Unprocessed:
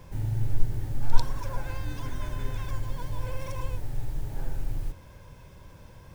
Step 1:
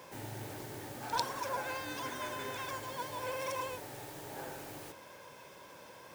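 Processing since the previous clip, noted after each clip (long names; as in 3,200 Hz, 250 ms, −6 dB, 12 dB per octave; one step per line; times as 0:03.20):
high-pass filter 390 Hz 12 dB per octave
level +4 dB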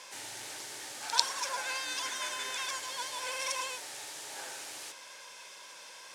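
meter weighting curve ITU-R 468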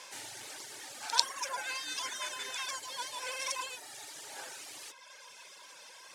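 reverb reduction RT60 1.2 s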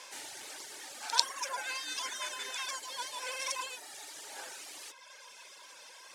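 high-pass filter 200 Hz 12 dB per octave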